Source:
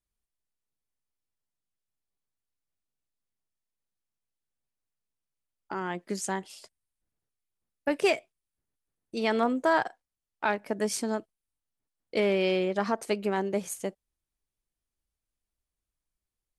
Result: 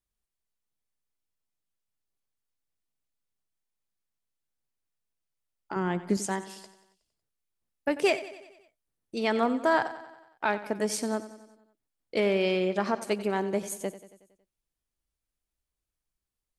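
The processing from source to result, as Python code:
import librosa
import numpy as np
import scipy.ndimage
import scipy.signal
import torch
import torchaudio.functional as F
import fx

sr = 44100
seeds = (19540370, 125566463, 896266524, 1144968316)

p1 = fx.low_shelf(x, sr, hz=330.0, db=11.5, at=(5.76, 6.17))
y = p1 + fx.echo_feedback(p1, sr, ms=92, feedback_pct=57, wet_db=-15.0, dry=0)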